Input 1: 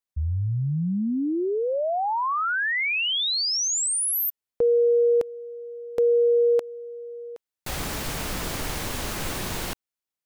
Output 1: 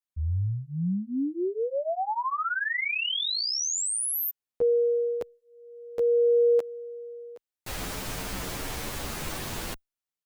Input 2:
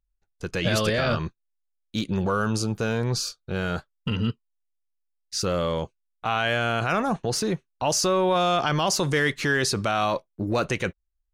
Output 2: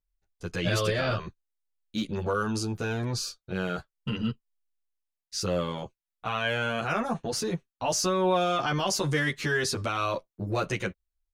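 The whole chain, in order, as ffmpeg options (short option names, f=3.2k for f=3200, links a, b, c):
-filter_complex "[0:a]asplit=2[a][b];[b]adelay=9.9,afreqshift=0.42[c];[a][c]amix=inputs=2:normalize=1,volume=-1dB"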